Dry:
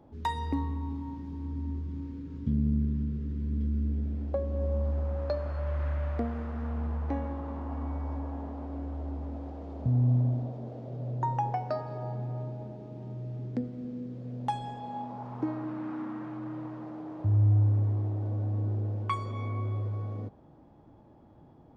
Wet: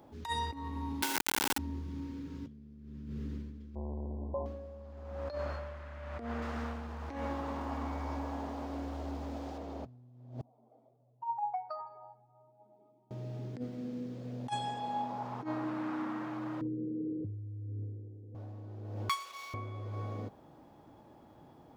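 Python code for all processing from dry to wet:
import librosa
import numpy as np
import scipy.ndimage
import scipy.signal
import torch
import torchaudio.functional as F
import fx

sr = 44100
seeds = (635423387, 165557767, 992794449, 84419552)

y = fx.chain(x, sr, fx.steep_highpass(hz=250.0, slope=48),
    fx.hum_notches(base_hz=50, count=8),
    fx.quant_companded(bits=2), at=(1.02, 1.58))
y = fx.chain(y, sr, fx.peak_eq(hz=110.0, db=2.5, octaves=1.8),
    fx.clip_hard(threshold_db=-32.5),
    fx.brickwall_lowpass(high_hz=1100.0), at=(3.75, 4.46))
y = fx.chain(y, sr, fx.high_shelf(hz=3200.0, db=9.5),
    fx.doppler_dist(depth_ms=0.14), at=(6.42, 9.58))
y = fx.chain(y, sr, fx.spec_expand(power=1.8),
    fx.highpass(hz=930.0, slope=12),
    fx.comb(ms=0.9, depth=0.64), at=(10.41, 13.11))
y = fx.chain(y, sr, fx.cheby1_lowpass(hz=500.0, order=8),
    fx.over_compress(threshold_db=-32.0, ratio=-1.0), at=(16.61, 18.35))
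y = fx.chain(y, sr, fx.median_filter(points=15),
    fx.highpass(hz=1400.0, slope=12), at=(19.09, 19.54))
y = fx.over_compress(y, sr, threshold_db=-33.0, ratio=-0.5)
y = fx.tilt_eq(y, sr, slope=2.5)
y = y * 10.0 ** (1.0 / 20.0)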